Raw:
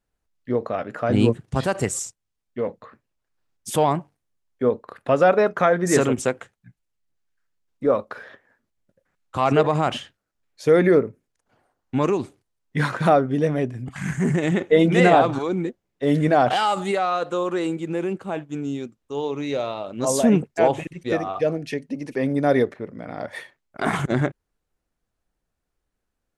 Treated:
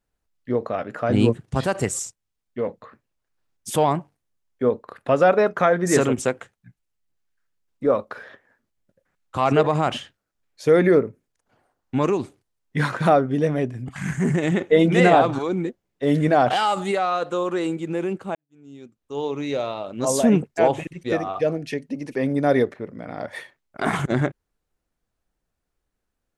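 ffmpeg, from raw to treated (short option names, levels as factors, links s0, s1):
-filter_complex "[0:a]asplit=2[s0][s1];[s0]atrim=end=18.35,asetpts=PTS-STARTPTS,afade=t=out:st=18.346:d=0.004:c=hsin[s2];[s1]atrim=start=18.35,asetpts=PTS-STARTPTS,afade=t=in:d=0.87:c=qua[s3];[s2][s3]concat=n=2:v=0:a=1"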